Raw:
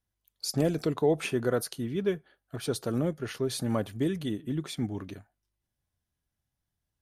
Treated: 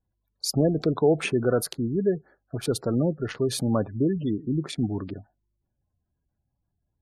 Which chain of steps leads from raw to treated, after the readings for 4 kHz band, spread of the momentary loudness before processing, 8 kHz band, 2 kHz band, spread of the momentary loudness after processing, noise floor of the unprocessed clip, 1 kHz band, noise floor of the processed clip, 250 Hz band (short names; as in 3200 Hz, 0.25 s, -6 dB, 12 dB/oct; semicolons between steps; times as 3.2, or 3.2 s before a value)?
+3.5 dB, 10 LU, +4.0 dB, +2.5 dB, 10 LU, -85 dBFS, +3.0 dB, -79 dBFS, +5.0 dB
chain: Wiener smoothing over 15 samples; in parallel at -6 dB: overloaded stage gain 33 dB; on the sum: spectral gate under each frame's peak -25 dB strong; gain +3.5 dB